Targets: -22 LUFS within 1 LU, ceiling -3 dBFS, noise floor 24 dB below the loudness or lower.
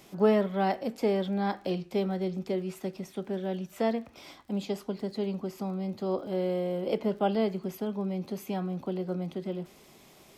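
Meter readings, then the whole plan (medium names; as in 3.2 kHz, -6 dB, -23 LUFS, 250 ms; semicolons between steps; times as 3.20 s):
tick rate 36 per s; loudness -31.5 LUFS; peak level -14.0 dBFS; loudness target -22.0 LUFS
-> de-click; trim +9.5 dB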